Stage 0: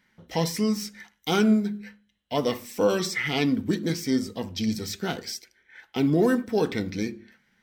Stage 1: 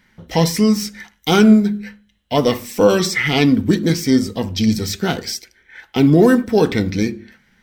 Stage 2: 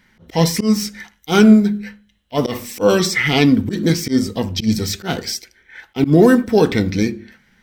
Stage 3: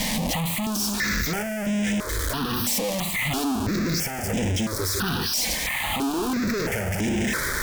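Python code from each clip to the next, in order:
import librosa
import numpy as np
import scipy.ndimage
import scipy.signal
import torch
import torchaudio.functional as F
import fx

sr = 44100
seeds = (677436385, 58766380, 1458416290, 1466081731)

y1 = fx.low_shelf(x, sr, hz=81.0, db=11.0)
y1 = y1 * 10.0 ** (9.0 / 20.0)
y2 = fx.auto_swell(y1, sr, attack_ms=103.0)
y2 = y2 * 10.0 ** (1.0 / 20.0)
y3 = np.sign(y2) * np.sqrt(np.mean(np.square(y2)))
y3 = fx.tube_stage(y3, sr, drive_db=21.0, bias=0.75)
y3 = fx.phaser_held(y3, sr, hz=3.0, low_hz=380.0, high_hz=4300.0)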